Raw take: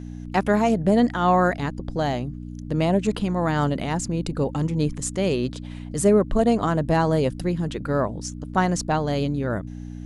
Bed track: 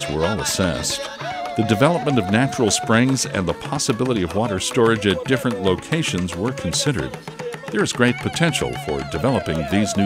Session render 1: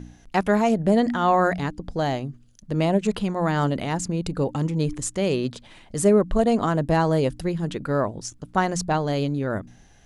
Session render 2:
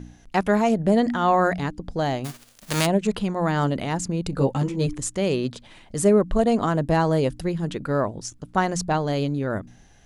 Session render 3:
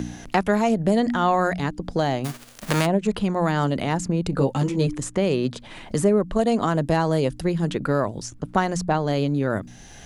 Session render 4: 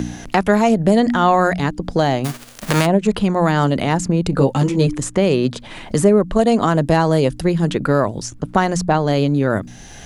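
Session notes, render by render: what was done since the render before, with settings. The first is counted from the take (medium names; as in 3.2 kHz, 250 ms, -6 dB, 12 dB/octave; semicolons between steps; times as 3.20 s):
de-hum 60 Hz, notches 5
2.24–2.85 s: formants flattened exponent 0.3; 4.31–4.87 s: doubling 15 ms -2 dB
three bands compressed up and down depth 70%
trim +6 dB; peak limiter -2 dBFS, peak gain reduction 2.5 dB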